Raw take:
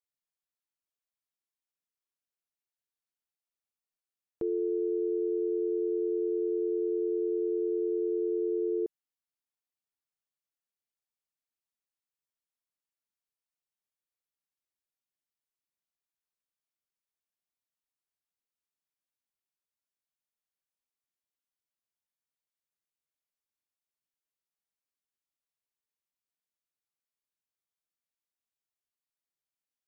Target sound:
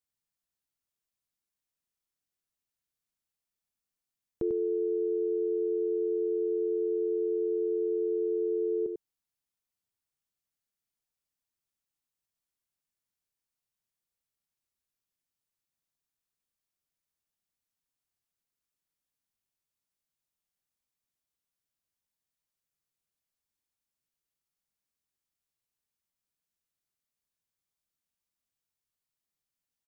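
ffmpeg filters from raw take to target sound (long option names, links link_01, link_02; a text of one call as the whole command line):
ffmpeg -i in.wav -af "bass=frequency=250:gain=8,treble=frequency=4000:gain=3,aecho=1:1:96:0.447" out.wav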